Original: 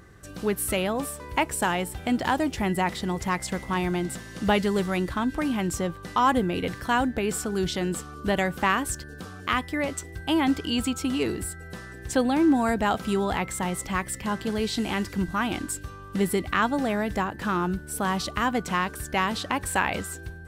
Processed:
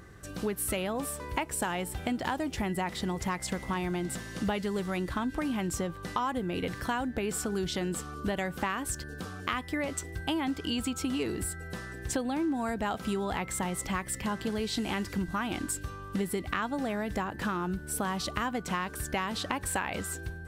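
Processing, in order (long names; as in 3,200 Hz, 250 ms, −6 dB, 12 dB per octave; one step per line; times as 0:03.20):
downward compressor, threshold −28 dBFS, peak gain reduction 11.5 dB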